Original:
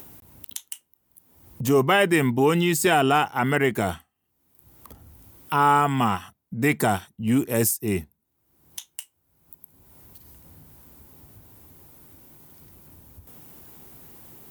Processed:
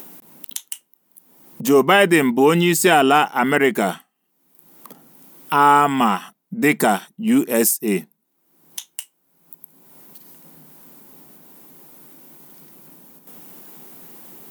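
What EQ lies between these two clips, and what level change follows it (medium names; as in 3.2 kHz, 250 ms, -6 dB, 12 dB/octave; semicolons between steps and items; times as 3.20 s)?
brick-wall FIR high-pass 150 Hz; +5.5 dB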